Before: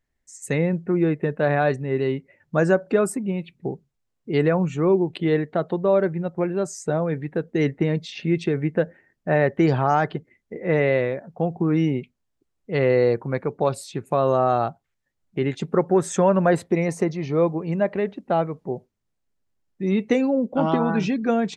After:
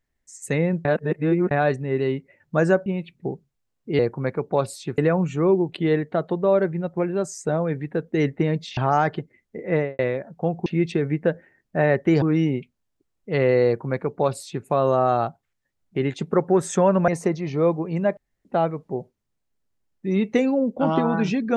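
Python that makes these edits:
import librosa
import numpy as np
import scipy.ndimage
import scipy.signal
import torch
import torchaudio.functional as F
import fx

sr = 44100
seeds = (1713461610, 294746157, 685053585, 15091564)

y = fx.studio_fade_out(x, sr, start_s=10.69, length_s=0.27)
y = fx.edit(y, sr, fx.reverse_span(start_s=0.85, length_s=0.66),
    fx.cut(start_s=2.86, length_s=0.4),
    fx.move(start_s=8.18, length_s=1.56, to_s=11.63),
    fx.duplicate(start_s=13.07, length_s=0.99, to_s=4.39),
    fx.cut(start_s=16.49, length_s=0.35),
    fx.room_tone_fill(start_s=17.93, length_s=0.28), tone=tone)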